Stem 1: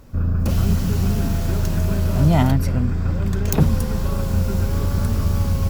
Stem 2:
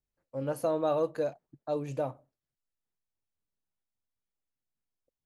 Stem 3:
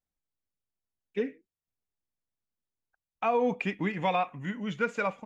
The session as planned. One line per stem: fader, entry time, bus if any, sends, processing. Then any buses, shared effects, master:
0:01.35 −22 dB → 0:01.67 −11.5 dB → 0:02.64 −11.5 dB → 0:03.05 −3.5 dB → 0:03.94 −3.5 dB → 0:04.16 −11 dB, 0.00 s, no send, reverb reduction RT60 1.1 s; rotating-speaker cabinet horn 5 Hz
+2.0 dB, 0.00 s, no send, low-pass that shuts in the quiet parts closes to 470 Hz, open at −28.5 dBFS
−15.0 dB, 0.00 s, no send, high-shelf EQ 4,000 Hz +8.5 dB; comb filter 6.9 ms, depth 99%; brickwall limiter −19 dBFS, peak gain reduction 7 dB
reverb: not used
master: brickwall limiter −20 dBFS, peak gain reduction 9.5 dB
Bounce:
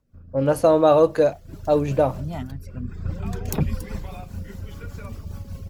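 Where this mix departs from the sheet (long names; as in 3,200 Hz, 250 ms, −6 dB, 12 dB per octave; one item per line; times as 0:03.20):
stem 2 +2.0 dB → +13.0 dB
master: missing brickwall limiter −20 dBFS, peak gain reduction 9.5 dB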